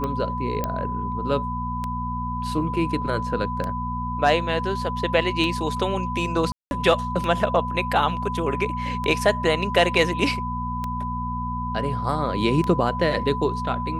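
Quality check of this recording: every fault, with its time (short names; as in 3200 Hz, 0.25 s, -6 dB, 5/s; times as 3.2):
hum 60 Hz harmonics 4 -30 dBFS
tick 33 1/3 rpm -15 dBFS
tone 1000 Hz -28 dBFS
0.64 pop -11 dBFS
6.52–6.71 gap 0.191 s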